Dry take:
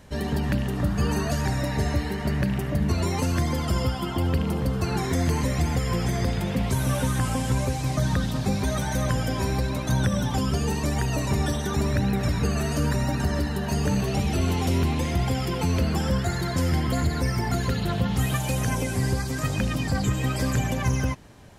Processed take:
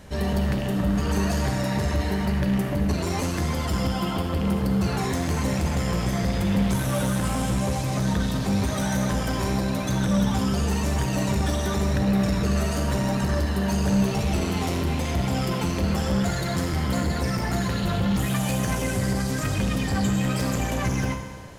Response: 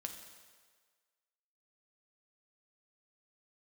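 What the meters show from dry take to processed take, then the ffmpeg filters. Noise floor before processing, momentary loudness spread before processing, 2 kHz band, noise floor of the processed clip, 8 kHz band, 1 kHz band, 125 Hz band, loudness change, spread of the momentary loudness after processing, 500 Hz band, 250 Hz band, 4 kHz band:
-29 dBFS, 2 LU, +0.5 dB, -27 dBFS, +1.0 dB, +1.0 dB, -1.0 dB, +0.5 dB, 3 LU, +1.0 dB, +2.5 dB, +1.0 dB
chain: -filter_complex "[0:a]asoftclip=type=tanh:threshold=0.0562[s0];[1:a]atrim=start_sample=2205,asetrate=42777,aresample=44100[s1];[s0][s1]afir=irnorm=-1:irlink=0,volume=2.24"

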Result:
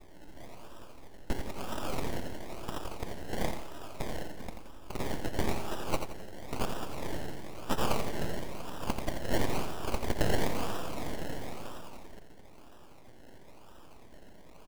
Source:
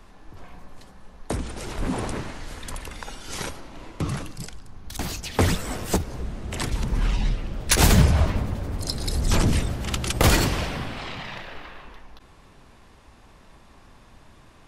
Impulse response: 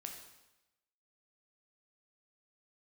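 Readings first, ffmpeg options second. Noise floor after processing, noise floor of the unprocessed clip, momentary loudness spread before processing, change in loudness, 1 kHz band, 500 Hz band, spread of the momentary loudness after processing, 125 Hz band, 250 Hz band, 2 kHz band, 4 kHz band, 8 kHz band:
-50 dBFS, -52 dBFS, 18 LU, -11.5 dB, -6.0 dB, -5.0 dB, 24 LU, -15.0 dB, -9.5 dB, -10.5 dB, -12.5 dB, -15.5 dB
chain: -filter_complex "[0:a]lowshelf=f=280:g=-9.5,aecho=1:1:3.2:0.89,adynamicequalizer=threshold=0.0126:dfrequency=980:dqfactor=1.2:tfrequency=980:tqfactor=1.2:attack=5:release=100:ratio=0.375:range=2:mode=cutabove:tftype=bell,acrossover=split=290|3700[s0][s1][s2];[s0]acompressor=threshold=0.00501:ratio=6[s3];[s3][s1][s2]amix=inputs=3:normalize=0,alimiter=limit=0.211:level=0:latency=1:release=478,acrusher=samples=29:mix=1:aa=0.000001:lfo=1:lforange=17.4:lforate=1,aeval=exprs='abs(val(0))':c=same,asplit=2[s4][s5];[s5]aecho=0:1:86|172|258|344:0.422|0.16|0.0609|0.0231[s6];[s4][s6]amix=inputs=2:normalize=0"

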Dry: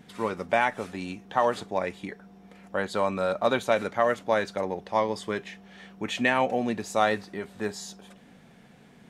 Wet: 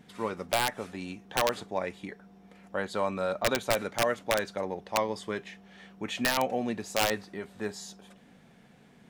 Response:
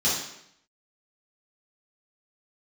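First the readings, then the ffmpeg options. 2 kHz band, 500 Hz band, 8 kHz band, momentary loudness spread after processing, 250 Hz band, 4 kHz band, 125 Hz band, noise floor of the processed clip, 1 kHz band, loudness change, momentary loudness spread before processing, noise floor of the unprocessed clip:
-3.5 dB, -4.0 dB, +5.5 dB, 14 LU, -4.0 dB, +3.0 dB, -2.5 dB, -58 dBFS, -5.0 dB, -3.5 dB, 14 LU, -54 dBFS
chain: -af "aeval=exprs='(mod(4.22*val(0)+1,2)-1)/4.22':c=same,volume=0.668"

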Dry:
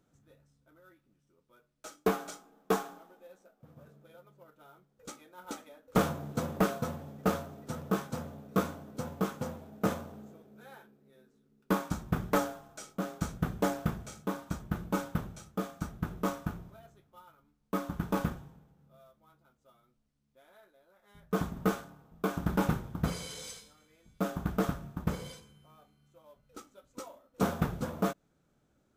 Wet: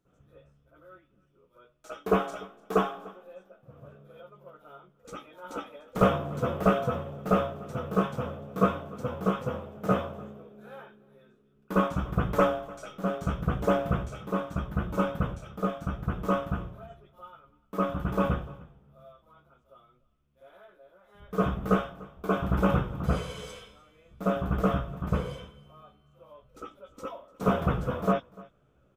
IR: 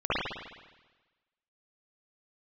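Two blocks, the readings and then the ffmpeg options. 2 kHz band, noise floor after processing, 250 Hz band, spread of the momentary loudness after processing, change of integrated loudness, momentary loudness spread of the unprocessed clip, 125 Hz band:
+3.5 dB, -66 dBFS, +4.0 dB, 19 LU, +5.0 dB, 18 LU, +5.0 dB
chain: -filter_complex "[0:a]aecho=1:1:296:0.0668,asplit=2[s0][s1];[s1]asoftclip=type=hard:threshold=0.0237,volume=0.316[s2];[s0][s2]amix=inputs=2:normalize=0[s3];[1:a]atrim=start_sample=2205,atrim=end_sample=4410[s4];[s3][s4]afir=irnorm=-1:irlink=0,volume=0.447"

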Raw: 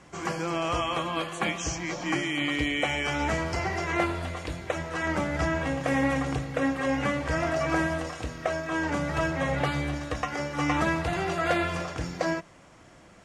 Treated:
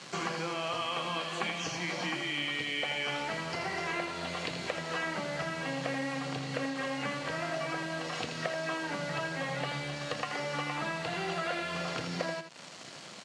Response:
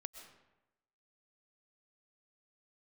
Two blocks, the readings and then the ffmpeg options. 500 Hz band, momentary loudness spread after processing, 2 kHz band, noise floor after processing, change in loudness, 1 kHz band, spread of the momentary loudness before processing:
-6.5 dB, 4 LU, -4.5 dB, -47 dBFS, -5.5 dB, -6.0 dB, 6 LU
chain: -filter_complex "[0:a]acrossover=split=4100[s0][s1];[s1]acompressor=threshold=0.00141:ratio=4:attack=1:release=60[s2];[s0][s2]amix=inputs=2:normalize=0,highshelf=f=3800:g=7,acompressor=threshold=0.0158:ratio=16,acrusher=bits=7:mix=0:aa=0.5,highpass=f=140:w=0.5412,highpass=f=140:w=1.3066,equalizer=f=310:t=q:w=4:g=-5,equalizer=f=2900:t=q:w=4:g=4,equalizer=f=4300:t=q:w=4:g=8,lowpass=f=8500:w=0.5412,lowpass=f=8500:w=1.3066,aecho=1:1:81:0.398,volume=1.78"

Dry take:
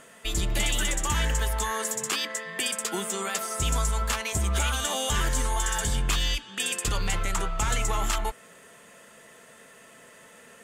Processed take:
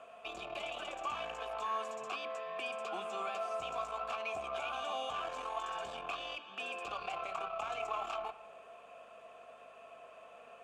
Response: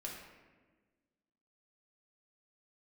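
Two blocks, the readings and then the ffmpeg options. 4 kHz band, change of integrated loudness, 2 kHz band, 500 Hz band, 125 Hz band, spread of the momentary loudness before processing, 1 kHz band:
-15.0 dB, -12.0 dB, -12.0 dB, -4.5 dB, -33.5 dB, 3 LU, -5.5 dB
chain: -filter_complex "[0:a]acrossover=split=260|1100|8000[s0][s1][s2][s3];[s0]acompressor=threshold=0.0224:ratio=4[s4];[s1]acompressor=threshold=0.0112:ratio=4[s5];[s2]acompressor=threshold=0.0251:ratio=4[s6];[s3]acompressor=threshold=0.00316:ratio=4[s7];[s4][s5][s6][s7]amix=inputs=4:normalize=0,aeval=exprs='val(0)+0.00126*(sin(2*PI*50*n/s)+sin(2*PI*2*50*n/s)/2+sin(2*PI*3*50*n/s)/3+sin(2*PI*4*50*n/s)/4+sin(2*PI*5*50*n/s)/5)':c=same,aeval=exprs='(tanh(28.2*val(0)+0.4)-tanh(0.4))/28.2':c=same,asplit=3[s8][s9][s10];[s8]bandpass=f=730:t=q:w=8,volume=1[s11];[s9]bandpass=f=1090:t=q:w=8,volume=0.501[s12];[s10]bandpass=f=2440:t=q:w=8,volume=0.355[s13];[s11][s12][s13]amix=inputs=3:normalize=0,asplit=2[s14][s15];[1:a]atrim=start_sample=2205,lowpass=4600[s16];[s15][s16]afir=irnorm=-1:irlink=0,volume=0.422[s17];[s14][s17]amix=inputs=2:normalize=0,volume=2.66"

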